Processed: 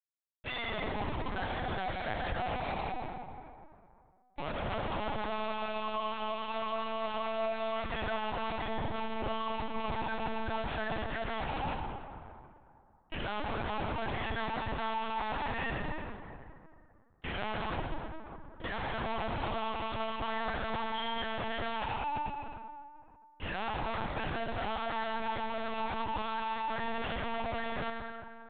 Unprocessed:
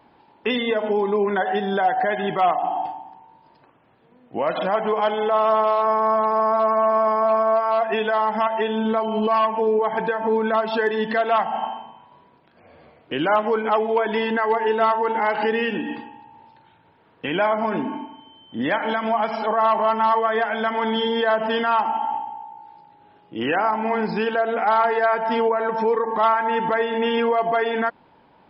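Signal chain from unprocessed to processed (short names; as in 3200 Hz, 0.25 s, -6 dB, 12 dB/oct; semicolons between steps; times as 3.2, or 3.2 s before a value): HPF 790 Hz 24 dB/oct; bell 1100 Hz -2.5 dB 1.8 oct; Schmitt trigger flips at -31 dBFS; reverb RT60 2.5 s, pre-delay 73 ms, DRR 2 dB; LPC vocoder at 8 kHz pitch kept; gain -8.5 dB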